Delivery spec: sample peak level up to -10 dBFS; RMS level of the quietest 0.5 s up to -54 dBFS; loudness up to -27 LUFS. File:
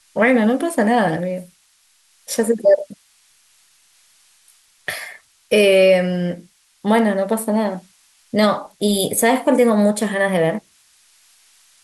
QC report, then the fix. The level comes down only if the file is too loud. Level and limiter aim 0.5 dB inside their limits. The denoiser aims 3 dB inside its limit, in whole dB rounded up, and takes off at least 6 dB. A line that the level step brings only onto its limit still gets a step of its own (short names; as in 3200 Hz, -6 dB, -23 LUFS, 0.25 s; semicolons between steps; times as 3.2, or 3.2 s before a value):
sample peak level -5.0 dBFS: fail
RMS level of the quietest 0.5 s -58 dBFS: OK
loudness -17.5 LUFS: fail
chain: gain -10 dB